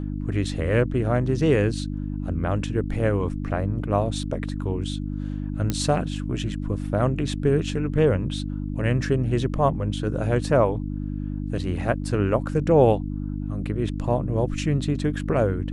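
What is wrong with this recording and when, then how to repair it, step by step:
hum 50 Hz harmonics 6 -29 dBFS
5.7 pop -10 dBFS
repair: de-click; de-hum 50 Hz, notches 6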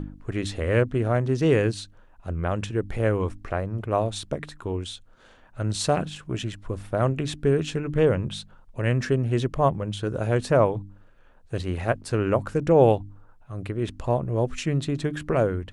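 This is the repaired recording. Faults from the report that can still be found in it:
none

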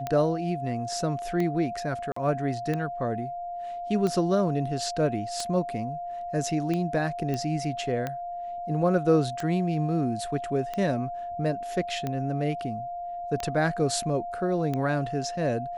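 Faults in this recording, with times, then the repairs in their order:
tick 45 rpm -17 dBFS
tone 700 Hz -32 dBFS
2.12–2.16 gap 44 ms
7.34 pop -18 dBFS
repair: de-click; notch 700 Hz, Q 30; interpolate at 2.12, 44 ms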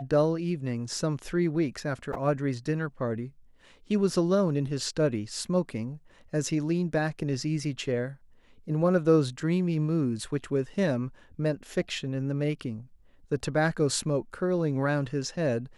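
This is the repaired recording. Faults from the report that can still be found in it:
none

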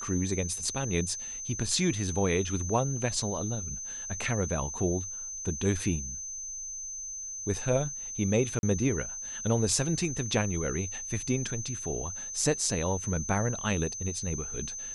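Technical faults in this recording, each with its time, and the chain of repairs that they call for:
tone 6200 Hz -36 dBFS
8.59–8.63 gap 41 ms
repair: notch 6200 Hz, Q 30; interpolate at 8.59, 41 ms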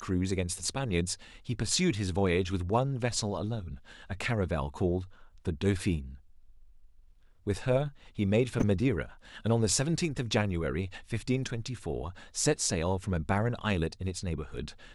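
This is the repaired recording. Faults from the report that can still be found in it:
none

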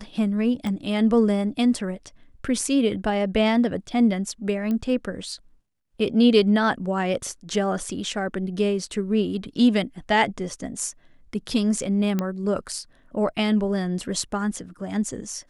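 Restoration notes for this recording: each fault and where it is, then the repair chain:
0.67 pop -18 dBFS
4.71 pop -17 dBFS
12.19 pop -12 dBFS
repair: de-click

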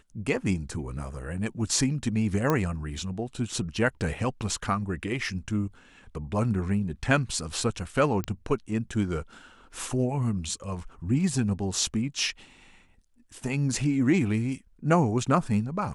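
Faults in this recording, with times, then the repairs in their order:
2.5 pop -11 dBFS
8.24 pop -16 dBFS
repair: de-click

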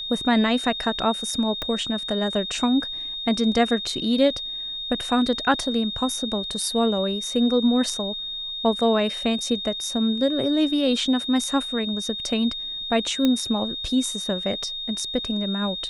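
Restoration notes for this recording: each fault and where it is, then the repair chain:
tone 3700 Hz -29 dBFS
1.62 pop -14 dBFS
13.25 pop -9 dBFS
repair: de-click; notch 3700 Hz, Q 30

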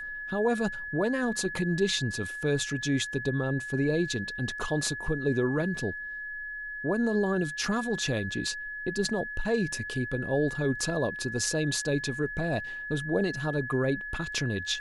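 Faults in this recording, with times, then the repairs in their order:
tone 1700 Hz -35 dBFS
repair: notch 1700 Hz, Q 30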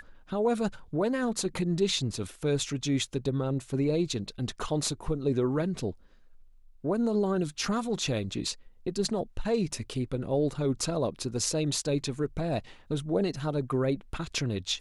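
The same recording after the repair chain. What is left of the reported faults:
none

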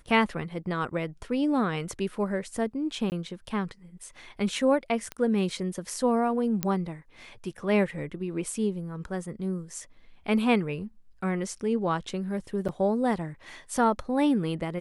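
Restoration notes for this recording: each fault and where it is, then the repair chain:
3.1–3.12 gap 19 ms
5.12 pop -19 dBFS
6.63 pop -11 dBFS
12.68–12.69 gap 7.2 ms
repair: de-click; interpolate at 3.1, 19 ms; interpolate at 12.68, 7.2 ms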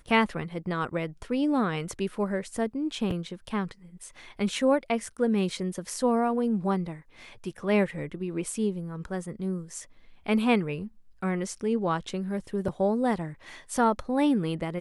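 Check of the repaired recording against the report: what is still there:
none

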